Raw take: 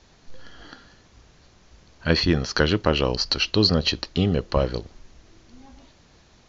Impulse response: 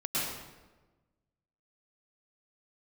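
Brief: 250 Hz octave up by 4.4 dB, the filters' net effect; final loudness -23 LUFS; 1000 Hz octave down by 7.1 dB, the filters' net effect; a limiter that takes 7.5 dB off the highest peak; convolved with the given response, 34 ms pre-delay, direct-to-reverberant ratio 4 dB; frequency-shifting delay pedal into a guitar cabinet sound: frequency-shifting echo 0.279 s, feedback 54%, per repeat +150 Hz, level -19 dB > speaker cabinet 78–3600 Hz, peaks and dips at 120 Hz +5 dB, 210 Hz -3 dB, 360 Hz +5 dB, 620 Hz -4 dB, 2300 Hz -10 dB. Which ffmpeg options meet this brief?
-filter_complex "[0:a]equalizer=f=250:t=o:g=6,equalizer=f=1k:t=o:g=-9,alimiter=limit=-10.5dB:level=0:latency=1,asplit=2[a][b];[1:a]atrim=start_sample=2205,adelay=34[c];[b][c]afir=irnorm=-1:irlink=0,volume=-11.5dB[d];[a][d]amix=inputs=2:normalize=0,asplit=5[e][f][g][h][i];[f]adelay=279,afreqshift=150,volume=-19dB[j];[g]adelay=558,afreqshift=300,volume=-24.4dB[k];[h]adelay=837,afreqshift=450,volume=-29.7dB[l];[i]adelay=1116,afreqshift=600,volume=-35.1dB[m];[e][j][k][l][m]amix=inputs=5:normalize=0,highpass=78,equalizer=f=120:t=q:w=4:g=5,equalizer=f=210:t=q:w=4:g=-3,equalizer=f=360:t=q:w=4:g=5,equalizer=f=620:t=q:w=4:g=-4,equalizer=f=2.3k:t=q:w=4:g=-10,lowpass=f=3.6k:w=0.5412,lowpass=f=3.6k:w=1.3066,volume=-1dB"

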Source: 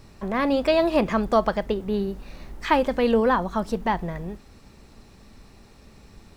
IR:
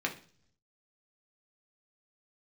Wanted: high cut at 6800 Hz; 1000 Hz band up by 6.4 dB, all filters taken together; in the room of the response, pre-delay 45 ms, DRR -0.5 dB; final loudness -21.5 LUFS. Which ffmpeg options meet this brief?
-filter_complex "[0:a]lowpass=6.8k,equalizer=f=1k:t=o:g=7.5,asplit=2[a][b];[1:a]atrim=start_sample=2205,adelay=45[c];[b][c]afir=irnorm=-1:irlink=0,volume=-5.5dB[d];[a][d]amix=inputs=2:normalize=0,volume=-3.5dB"

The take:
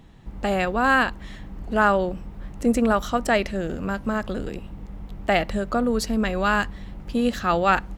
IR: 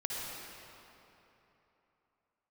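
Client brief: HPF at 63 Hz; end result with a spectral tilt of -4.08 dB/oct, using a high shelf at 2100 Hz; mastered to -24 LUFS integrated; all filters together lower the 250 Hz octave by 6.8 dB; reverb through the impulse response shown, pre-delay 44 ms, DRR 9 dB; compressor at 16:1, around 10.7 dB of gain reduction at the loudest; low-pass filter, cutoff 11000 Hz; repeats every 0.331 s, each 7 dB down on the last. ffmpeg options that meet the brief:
-filter_complex "[0:a]highpass=63,lowpass=11k,equalizer=f=250:t=o:g=-8,highshelf=f=2.1k:g=-4.5,acompressor=threshold=-26dB:ratio=16,aecho=1:1:331|662|993|1324|1655:0.447|0.201|0.0905|0.0407|0.0183,asplit=2[a][b];[1:a]atrim=start_sample=2205,adelay=44[c];[b][c]afir=irnorm=-1:irlink=0,volume=-13dB[d];[a][d]amix=inputs=2:normalize=0,volume=7.5dB"

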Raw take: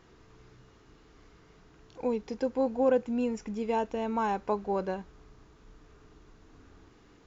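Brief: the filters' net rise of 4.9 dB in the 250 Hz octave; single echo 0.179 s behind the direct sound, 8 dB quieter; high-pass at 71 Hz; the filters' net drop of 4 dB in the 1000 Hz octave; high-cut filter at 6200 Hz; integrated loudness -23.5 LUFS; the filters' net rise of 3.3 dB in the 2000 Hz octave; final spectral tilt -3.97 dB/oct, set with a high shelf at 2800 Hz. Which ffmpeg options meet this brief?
-af "highpass=71,lowpass=6.2k,equalizer=f=250:t=o:g=5.5,equalizer=f=1k:t=o:g=-7,equalizer=f=2k:t=o:g=4.5,highshelf=f=2.8k:g=7.5,aecho=1:1:179:0.398,volume=4.5dB"

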